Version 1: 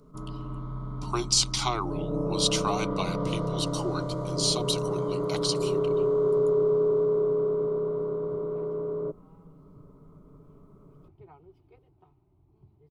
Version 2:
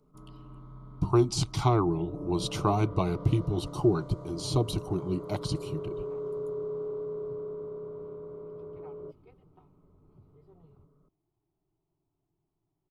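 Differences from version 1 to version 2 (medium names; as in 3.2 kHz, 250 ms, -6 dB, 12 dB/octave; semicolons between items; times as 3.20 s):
speech: remove frequency weighting ITU-R 468; first sound -11.5 dB; second sound: entry -2.45 s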